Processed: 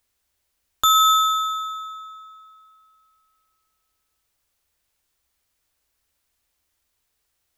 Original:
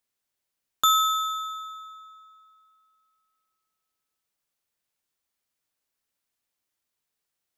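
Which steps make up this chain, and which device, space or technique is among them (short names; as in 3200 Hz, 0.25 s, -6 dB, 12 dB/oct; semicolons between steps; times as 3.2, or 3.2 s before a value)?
car stereo with a boomy subwoofer (resonant low shelf 100 Hz +10.5 dB, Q 1.5; limiter -17 dBFS, peak gain reduction 7 dB); gain +9 dB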